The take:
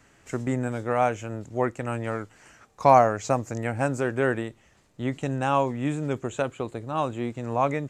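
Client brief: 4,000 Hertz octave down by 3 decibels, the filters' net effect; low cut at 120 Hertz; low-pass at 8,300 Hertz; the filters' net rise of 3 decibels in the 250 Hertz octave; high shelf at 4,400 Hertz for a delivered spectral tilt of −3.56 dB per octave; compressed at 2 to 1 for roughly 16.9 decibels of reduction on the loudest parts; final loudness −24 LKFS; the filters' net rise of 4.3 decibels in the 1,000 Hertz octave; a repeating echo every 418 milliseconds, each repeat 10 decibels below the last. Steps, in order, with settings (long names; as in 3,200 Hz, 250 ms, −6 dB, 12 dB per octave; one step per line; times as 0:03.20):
high-pass filter 120 Hz
low-pass filter 8,300 Hz
parametric band 250 Hz +3.5 dB
parametric band 1,000 Hz +5.5 dB
parametric band 4,000 Hz −7.5 dB
high-shelf EQ 4,400 Hz +5.5 dB
downward compressor 2 to 1, threshold −39 dBFS
repeating echo 418 ms, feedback 32%, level −10 dB
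level +11.5 dB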